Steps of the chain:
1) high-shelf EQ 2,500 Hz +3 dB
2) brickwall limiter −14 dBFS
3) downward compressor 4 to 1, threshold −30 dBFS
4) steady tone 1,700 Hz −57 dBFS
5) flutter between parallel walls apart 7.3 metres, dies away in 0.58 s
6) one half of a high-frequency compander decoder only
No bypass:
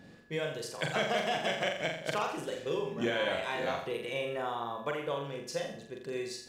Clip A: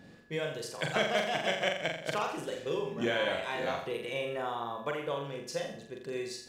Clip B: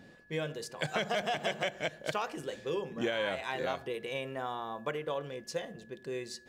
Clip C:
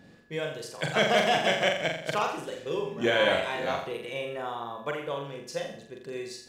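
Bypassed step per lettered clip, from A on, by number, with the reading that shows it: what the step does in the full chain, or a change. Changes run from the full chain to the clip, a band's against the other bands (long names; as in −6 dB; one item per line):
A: 2, change in crest factor +2.5 dB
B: 5, change in crest factor +1.5 dB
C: 3, average gain reduction 2.0 dB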